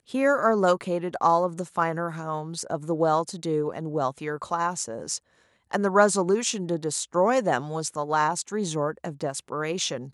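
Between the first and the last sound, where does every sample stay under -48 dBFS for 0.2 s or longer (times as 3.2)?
5.18–5.71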